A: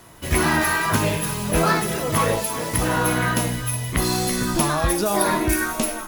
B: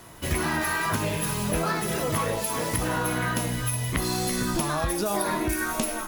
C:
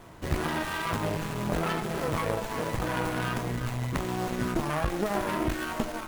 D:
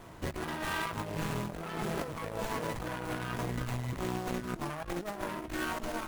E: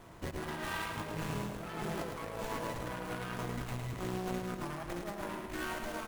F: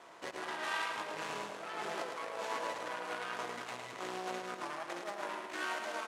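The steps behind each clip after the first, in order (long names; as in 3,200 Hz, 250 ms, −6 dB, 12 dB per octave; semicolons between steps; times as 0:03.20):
downward compressor, threshold −23 dBFS, peak gain reduction 8.5 dB
harmonic generator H 4 −10 dB, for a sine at −7.5 dBFS; parametric band 3,900 Hz −7.5 dB 1.5 octaves; windowed peak hold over 9 samples
compressor whose output falls as the input rises −32 dBFS, ratio −0.5; level −3.5 dB
repeating echo 108 ms, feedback 52%, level −6 dB; level −4 dB
band-pass filter 520–7,600 Hz; level +2.5 dB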